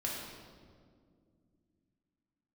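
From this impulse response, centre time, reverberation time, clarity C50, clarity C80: 89 ms, 2.1 s, 0.0 dB, 2.0 dB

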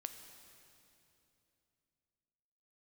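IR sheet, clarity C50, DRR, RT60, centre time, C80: 8.0 dB, 7.0 dB, 2.9 s, 37 ms, 8.5 dB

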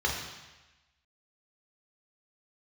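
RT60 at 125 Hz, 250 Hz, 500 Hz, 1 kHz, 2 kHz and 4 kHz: 1.1, 1.0, 1.0, 1.1, 1.2, 1.1 seconds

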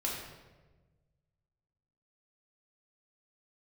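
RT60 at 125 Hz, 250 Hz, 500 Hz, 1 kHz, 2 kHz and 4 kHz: 2.2, 1.6, 1.4, 1.1, 1.0, 0.80 seconds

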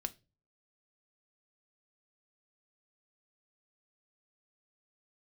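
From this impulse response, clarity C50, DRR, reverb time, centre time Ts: 22.0 dB, 9.0 dB, non-exponential decay, 4 ms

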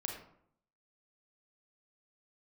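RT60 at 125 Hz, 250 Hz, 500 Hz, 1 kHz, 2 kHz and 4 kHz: 0.80, 0.75, 0.70, 0.65, 0.50, 0.35 seconds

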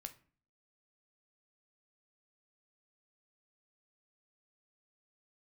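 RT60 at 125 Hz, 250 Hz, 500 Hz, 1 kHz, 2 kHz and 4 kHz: 0.60, 0.60, 0.45, 0.40, 0.40, 0.30 seconds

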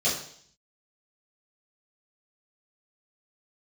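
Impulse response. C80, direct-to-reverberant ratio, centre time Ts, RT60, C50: 9.0 dB, −11.5 dB, 38 ms, 0.60 s, 5.0 dB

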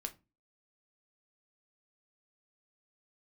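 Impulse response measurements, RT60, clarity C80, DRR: 0.25 s, 25.5 dB, 5.5 dB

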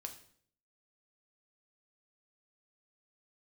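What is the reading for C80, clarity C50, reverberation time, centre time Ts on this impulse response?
14.5 dB, 11.0 dB, 0.60 s, 12 ms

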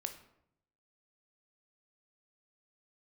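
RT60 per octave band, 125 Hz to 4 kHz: 1.0, 0.90, 0.80, 0.70, 0.60, 0.45 seconds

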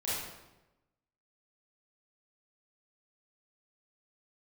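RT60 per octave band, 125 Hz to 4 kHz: 1.2, 1.1, 1.1, 0.95, 0.85, 0.75 seconds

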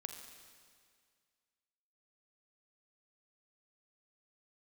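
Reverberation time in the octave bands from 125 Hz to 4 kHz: 2.1, 2.0, 2.0, 2.0, 2.0, 2.0 seconds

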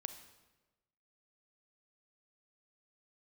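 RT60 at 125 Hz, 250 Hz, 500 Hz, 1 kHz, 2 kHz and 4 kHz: 1.3, 1.2, 1.3, 1.1, 1.0, 0.90 seconds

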